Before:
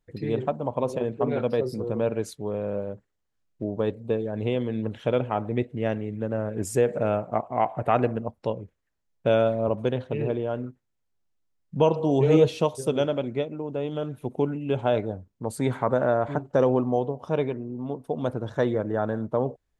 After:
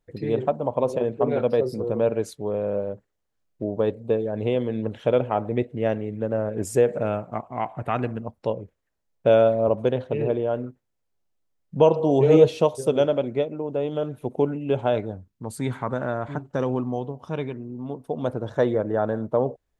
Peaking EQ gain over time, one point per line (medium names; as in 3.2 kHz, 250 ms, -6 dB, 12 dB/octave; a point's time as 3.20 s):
peaking EQ 560 Hz 1.3 oct
6.77 s +4.5 dB
7.37 s -6.5 dB
8.15 s -6.5 dB
8.57 s +5 dB
14.70 s +5 dB
15.29 s -6.5 dB
17.47 s -6.5 dB
18.46 s +4 dB